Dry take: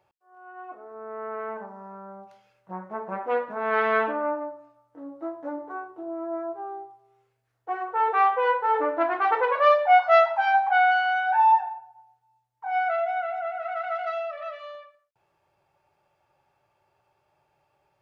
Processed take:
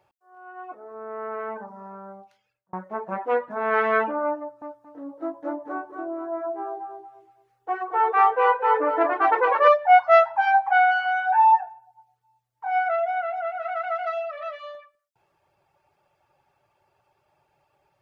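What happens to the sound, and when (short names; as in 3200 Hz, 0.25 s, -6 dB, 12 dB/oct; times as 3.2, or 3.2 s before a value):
2.1–2.73 fade out
4.39–9.68 feedback echo 0.227 s, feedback 30%, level -5.5 dB
whole clip: reverb removal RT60 0.53 s; dynamic EQ 3900 Hz, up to -6 dB, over -45 dBFS, Q 1.4; gain +3 dB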